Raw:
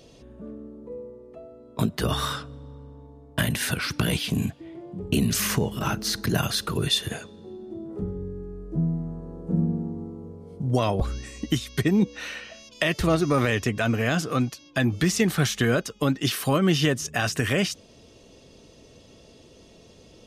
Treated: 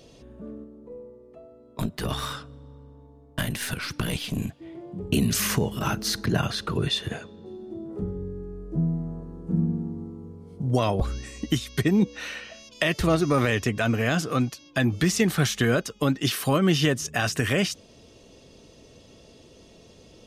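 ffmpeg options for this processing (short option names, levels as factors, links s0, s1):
-filter_complex "[0:a]asettb=1/sr,asplit=3[s0][s1][s2];[s0]atrim=end=0.644[s3];[s1]atrim=start=0.64:end=4.62,asetpts=PTS-STARTPTS,afade=t=in:d=0.004:c=qsin,afade=t=out:st=3.976:d=0.004:c=qsin,aeval=exprs='(tanh(5.01*val(0)+0.7)-tanh(0.7))/5.01':c=same[s4];[s2]atrim=start=4.616[s5];[s3][s4]acrossfade=d=0.004:c1=hsin:c2=qsin[s6];[s6][s5]acrossfade=d=0.004:c1=qsin:c2=hsin,asettb=1/sr,asplit=3[s7][s8][s9];[s7]atrim=end=6.234[s10];[s8]atrim=start=6.23:end=7.46,asetpts=PTS-STARTPTS,afade=t=in:d=0.004:c=qsin,afade=t=out:st=1.226:d=0.004:c=qsin,aemphasis=mode=reproduction:type=50fm[s11];[s9]atrim=start=7.456[s12];[s10][s11]acrossfade=d=0.004:c1=hsin:c2=qsin[s13];[s13][s12]acrossfade=d=0.004:c1=qsin:c2=hsin,asettb=1/sr,asplit=3[s14][s15][s16];[s14]atrim=end=9.234[s17];[s15]atrim=start=9.23:end=10.59,asetpts=PTS-STARTPTS,afade=t=in:d=0.004:c=qsin,afade=t=out:st=1.356:d=0.004:c=qsin,equalizer=f=590:t=o:w=0.77:g=-9.5[s18];[s16]atrim=start=10.586[s19];[s17][s18]acrossfade=d=0.004:c1=hsin:c2=qsin[s20];[s20][s19]acrossfade=d=0.004:c1=qsin:c2=hsin"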